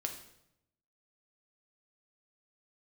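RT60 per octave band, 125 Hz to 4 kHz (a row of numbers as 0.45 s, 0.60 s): 1.2 s, 0.95 s, 0.85 s, 0.75 s, 0.70 s, 0.65 s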